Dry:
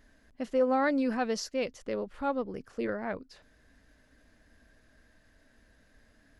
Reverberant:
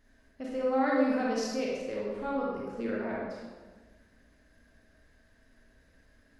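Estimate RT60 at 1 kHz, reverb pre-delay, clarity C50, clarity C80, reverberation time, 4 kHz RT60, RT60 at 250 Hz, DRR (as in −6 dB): 1.3 s, 27 ms, −1.5 dB, 1.5 dB, 1.4 s, 0.90 s, 1.7 s, −4.5 dB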